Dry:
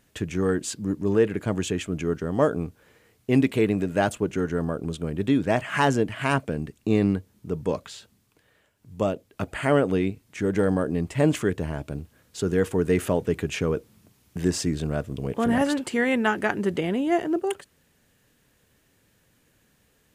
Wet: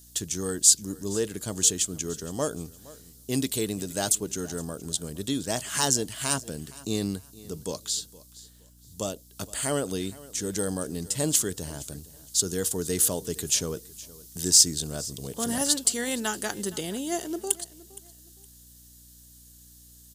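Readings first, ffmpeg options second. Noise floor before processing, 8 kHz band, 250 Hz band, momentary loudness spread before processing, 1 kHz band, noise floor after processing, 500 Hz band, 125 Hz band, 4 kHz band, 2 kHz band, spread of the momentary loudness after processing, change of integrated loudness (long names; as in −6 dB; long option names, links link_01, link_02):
−65 dBFS, +16.5 dB, −8.0 dB, 9 LU, −8.0 dB, −52 dBFS, −8.0 dB, −8.0 dB, +8.0 dB, −8.5 dB, 16 LU, −1.0 dB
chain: -af "aecho=1:1:466|932:0.1|0.026,aeval=exprs='val(0)+0.00447*(sin(2*PI*60*n/s)+sin(2*PI*2*60*n/s)/2+sin(2*PI*3*60*n/s)/3+sin(2*PI*4*60*n/s)/4+sin(2*PI*5*60*n/s)/5)':channel_layout=same,aexciter=amount=12.8:drive=5.3:freq=3600,volume=-8dB"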